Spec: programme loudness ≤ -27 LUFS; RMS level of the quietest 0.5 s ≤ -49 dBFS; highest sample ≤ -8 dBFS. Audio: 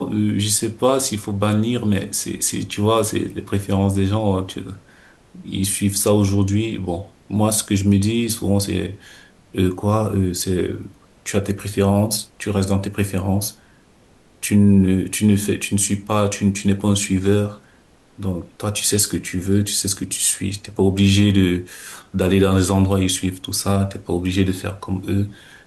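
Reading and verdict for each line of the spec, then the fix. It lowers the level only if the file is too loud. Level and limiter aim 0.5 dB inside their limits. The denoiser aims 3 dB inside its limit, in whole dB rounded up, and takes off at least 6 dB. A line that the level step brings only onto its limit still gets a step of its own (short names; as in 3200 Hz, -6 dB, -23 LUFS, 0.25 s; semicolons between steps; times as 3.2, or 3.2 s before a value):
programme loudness -19.5 LUFS: fail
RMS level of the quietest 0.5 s -52 dBFS: OK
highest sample -5.0 dBFS: fail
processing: gain -8 dB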